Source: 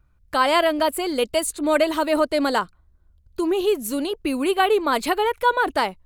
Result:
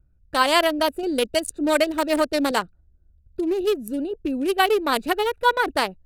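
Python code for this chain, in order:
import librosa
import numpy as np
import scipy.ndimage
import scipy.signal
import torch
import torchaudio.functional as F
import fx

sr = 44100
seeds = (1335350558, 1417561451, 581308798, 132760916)

y = fx.wiener(x, sr, points=41)
y = fx.high_shelf(y, sr, hz=2700.0, db=9.0)
y = fx.band_squash(y, sr, depth_pct=40, at=(1.03, 2.51))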